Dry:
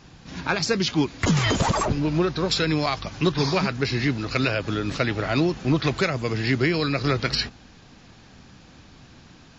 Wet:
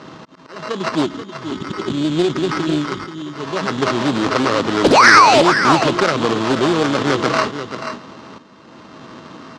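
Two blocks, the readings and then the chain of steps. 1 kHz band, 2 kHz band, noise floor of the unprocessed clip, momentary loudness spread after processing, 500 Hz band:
+14.0 dB, +10.0 dB, −50 dBFS, 18 LU, +8.0 dB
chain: samples sorted by size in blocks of 16 samples
high-shelf EQ 3,600 Hz −11.5 dB
in parallel at 0 dB: compressor whose output falls as the input rises −30 dBFS, ratio −0.5
on the sum: volume swells 667 ms
time-frequency box erased 0:01.05–0:03.17, 420–3,300 Hz
pitch vibrato 6.5 Hz 8.8 cents
sound drawn into the spectrogram fall, 0:04.84–0:05.42, 530–4,100 Hz −15 dBFS
sample-rate reduction 3,400 Hz, jitter 0%
loudspeaker in its box 280–5,800 Hz, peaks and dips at 710 Hz −7 dB, 1,100 Hz +7 dB, 2,300 Hz −5 dB
on a send: single-tap delay 484 ms −10 dB
on the sum: boost into a limiter +8.5 dB
highs frequency-modulated by the lows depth 0.49 ms

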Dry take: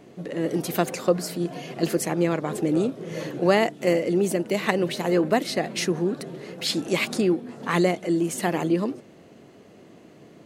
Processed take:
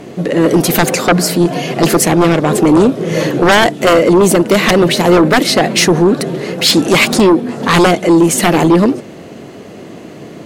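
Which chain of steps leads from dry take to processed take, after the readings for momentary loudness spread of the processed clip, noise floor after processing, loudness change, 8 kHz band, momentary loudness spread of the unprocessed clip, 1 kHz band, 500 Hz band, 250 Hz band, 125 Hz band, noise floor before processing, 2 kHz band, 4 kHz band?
5 LU, −32 dBFS, +14.0 dB, +17.0 dB, 8 LU, +15.5 dB, +13.0 dB, +14.0 dB, +14.5 dB, −50 dBFS, +15.5 dB, +16.5 dB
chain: sine wavefolder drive 14 dB, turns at −4 dBFS

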